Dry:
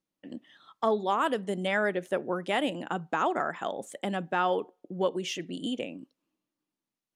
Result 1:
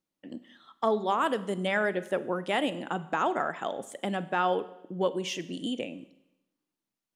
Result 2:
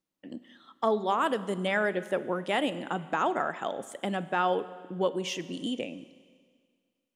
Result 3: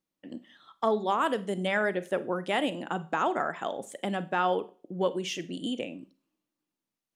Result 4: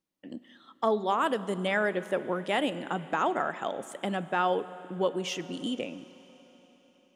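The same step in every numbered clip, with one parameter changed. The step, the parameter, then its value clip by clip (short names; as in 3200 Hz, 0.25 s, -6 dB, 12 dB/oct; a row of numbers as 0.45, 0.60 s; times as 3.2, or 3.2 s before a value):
Schroeder reverb, RT60: 0.87, 1.9, 0.36, 4.4 s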